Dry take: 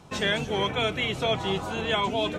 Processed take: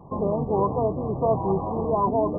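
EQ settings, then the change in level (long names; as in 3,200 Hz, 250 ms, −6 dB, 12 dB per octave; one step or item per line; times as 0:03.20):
linear-phase brick-wall low-pass 1,200 Hz
+5.0 dB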